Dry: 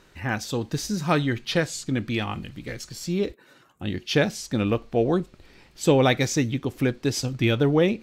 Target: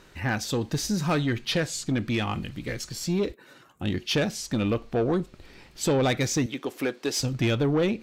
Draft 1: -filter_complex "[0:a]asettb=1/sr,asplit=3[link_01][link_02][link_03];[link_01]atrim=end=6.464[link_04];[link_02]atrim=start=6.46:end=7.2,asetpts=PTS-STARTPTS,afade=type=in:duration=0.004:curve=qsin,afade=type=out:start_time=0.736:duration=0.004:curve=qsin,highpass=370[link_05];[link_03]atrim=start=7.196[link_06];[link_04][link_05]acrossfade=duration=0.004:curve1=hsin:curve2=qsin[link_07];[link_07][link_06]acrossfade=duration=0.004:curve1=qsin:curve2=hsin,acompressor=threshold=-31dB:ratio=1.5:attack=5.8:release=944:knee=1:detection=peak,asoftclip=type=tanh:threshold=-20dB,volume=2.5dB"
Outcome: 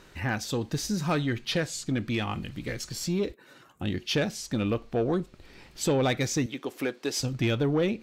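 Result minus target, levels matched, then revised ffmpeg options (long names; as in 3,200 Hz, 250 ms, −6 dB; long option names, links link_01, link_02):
downward compressor: peak gain reduction +3 dB
-filter_complex "[0:a]asettb=1/sr,asplit=3[link_01][link_02][link_03];[link_01]atrim=end=6.464[link_04];[link_02]atrim=start=6.46:end=7.2,asetpts=PTS-STARTPTS,afade=type=in:duration=0.004:curve=qsin,afade=type=out:start_time=0.736:duration=0.004:curve=qsin,highpass=370[link_05];[link_03]atrim=start=7.196[link_06];[link_04][link_05]acrossfade=duration=0.004:curve1=hsin:curve2=qsin[link_07];[link_07][link_06]acrossfade=duration=0.004:curve1=qsin:curve2=hsin,acompressor=threshold=-22dB:ratio=1.5:attack=5.8:release=944:knee=1:detection=peak,asoftclip=type=tanh:threshold=-20dB,volume=2.5dB"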